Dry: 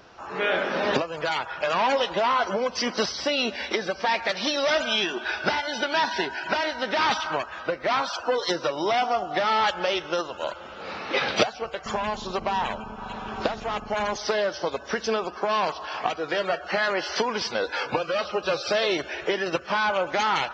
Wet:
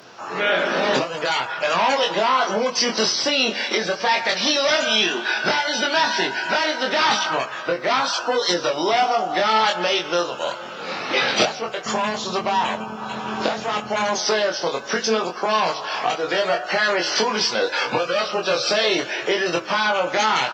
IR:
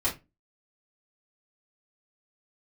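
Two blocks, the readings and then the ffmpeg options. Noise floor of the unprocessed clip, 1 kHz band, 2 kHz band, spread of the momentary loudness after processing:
−41 dBFS, +4.5 dB, +5.5 dB, 6 LU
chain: -filter_complex "[0:a]highpass=frequency=120:width=0.5412,highpass=frequency=120:width=1.3066,asplit=2[link_01][link_02];[link_02]adelay=23,volume=-3.5dB[link_03];[link_01][link_03]amix=inputs=2:normalize=0,flanger=delay=8.1:depth=6.6:regen=87:speed=0.72:shape=sinusoidal,asplit=2[link_04][link_05];[link_05]alimiter=limit=-24dB:level=0:latency=1:release=35,volume=-2dB[link_06];[link_04][link_06]amix=inputs=2:normalize=0,aemphasis=mode=production:type=cd,volume=4dB"

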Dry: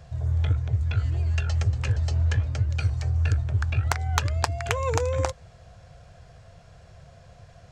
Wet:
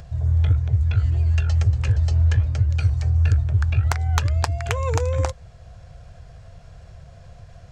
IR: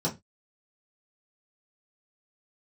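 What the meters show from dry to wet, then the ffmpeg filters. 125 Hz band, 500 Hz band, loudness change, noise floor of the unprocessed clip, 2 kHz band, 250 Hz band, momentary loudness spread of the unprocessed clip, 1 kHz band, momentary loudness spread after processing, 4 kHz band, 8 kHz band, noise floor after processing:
+5.0 dB, +0.5 dB, +5.0 dB, −51 dBFS, 0.0 dB, +2.5 dB, 3 LU, 0.0 dB, 5 LU, 0.0 dB, 0.0 dB, −45 dBFS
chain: -af "acompressor=mode=upward:threshold=-43dB:ratio=2.5,lowshelf=frequency=84:gain=11"

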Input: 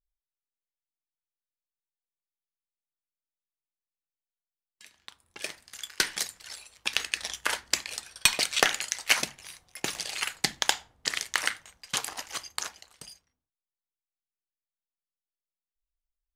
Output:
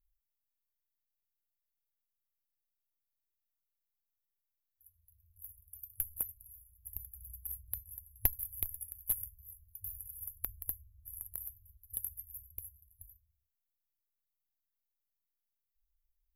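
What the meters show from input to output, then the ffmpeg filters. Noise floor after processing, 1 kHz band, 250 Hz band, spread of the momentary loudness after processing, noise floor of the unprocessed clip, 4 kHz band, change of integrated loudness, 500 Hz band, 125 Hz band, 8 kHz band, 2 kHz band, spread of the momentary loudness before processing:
below −85 dBFS, −27.0 dB, −17.5 dB, 17 LU, below −85 dBFS, −37.5 dB, −10.5 dB, −23.0 dB, −0.5 dB, −13.5 dB, −32.0 dB, 18 LU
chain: -af "afftfilt=real='re*(1-between(b*sr/4096,100,11000))':imag='im*(1-between(b*sr/4096,100,11000))':win_size=4096:overlap=0.75,aeval=exprs='0.119*(cos(1*acos(clip(val(0)/0.119,-1,1)))-cos(1*PI/2))+0.0237*(cos(2*acos(clip(val(0)/0.119,-1,1)))-cos(2*PI/2))+0.00944*(cos(3*acos(clip(val(0)/0.119,-1,1)))-cos(3*PI/2))':channel_layout=same,volume=10dB"

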